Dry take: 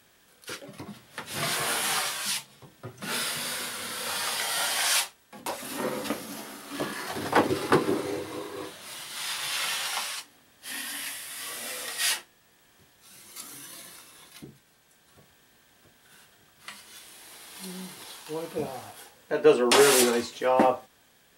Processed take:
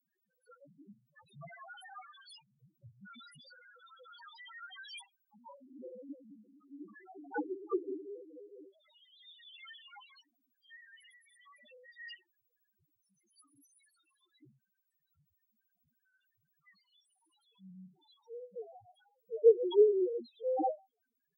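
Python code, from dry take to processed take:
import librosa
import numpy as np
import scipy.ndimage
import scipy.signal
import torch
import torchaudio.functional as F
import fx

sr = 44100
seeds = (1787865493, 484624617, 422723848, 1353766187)

y = fx.cheby_harmonics(x, sr, harmonics=(3, 7), levels_db=(-20, -25), full_scale_db=-5.5)
y = fx.spec_topn(y, sr, count=1)
y = F.gain(torch.from_numpy(y), 4.5).numpy()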